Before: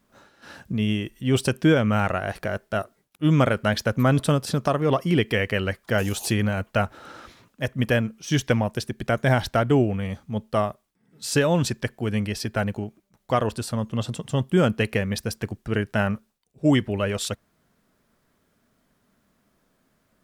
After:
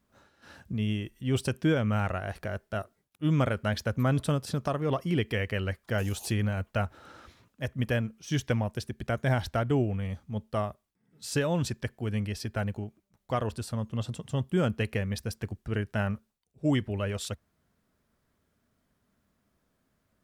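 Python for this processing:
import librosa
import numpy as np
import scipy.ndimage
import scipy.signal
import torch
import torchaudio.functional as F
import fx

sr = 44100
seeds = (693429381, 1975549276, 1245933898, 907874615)

y = fx.peak_eq(x, sr, hz=73.0, db=8.5, octaves=1.2)
y = y * 10.0 ** (-8.0 / 20.0)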